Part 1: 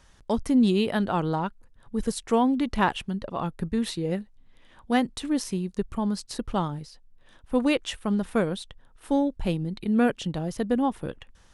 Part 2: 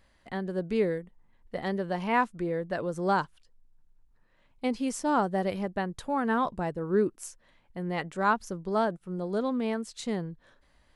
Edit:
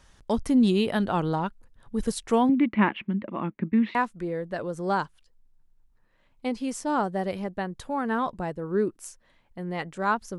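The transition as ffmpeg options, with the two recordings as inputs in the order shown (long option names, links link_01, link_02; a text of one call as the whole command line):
ffmpeg -i cue0.wav -i cue1.wav -filter_complex "[0:a]asettb=1/sr,asplit=3[link_01][link_02][link_03];[link_01]atrim=end=2.494[link_04];[link_02]atrim=start=2.49:end=3.95,asetpts=PTS-STARTPTS,afade=type=in:duration=0.004:curve=qsin,afade=type=out:start_time=1.456:duration=0.004:curve=qsin,highpass=180,equalizer=frequency=210:width_type=q:width=4:gain=8,equalizer=frequency=320:width_type=q:width=4:gain=7,equalizer=frequency=460:width_type=q:width=4:gain=-6,equalizer=frequency=750:width_type=q:width=4:gain=-8,equalizer=frequency=1400:width_type=q:width=4:gain=-3,equalizer=frequency=2200:width_type=q:width=4:gain=9,lowpass=frequency=2600:width=0.5412,lowpass=frequency=2600:width=1.3066[link_05];[link_03]atrim=start=3.946[link_06];[link_04][link_05]acrossfade=duration=0.004:curve1=hsin:curve2=qsin[link_07];[link_07][link_06]acrossfade=duration=0.004:curve1=qsin:curve2=hsin,apad=whole_dur=10.38,atrim=end=10.38,atrim=end=3.952[link_08];[1:a]atrim=start=2.138:end=8.57[link_09];[link_08][link_09]acrossfade=duration=0.004:curve1=hsin:curve2=hsin" out.wav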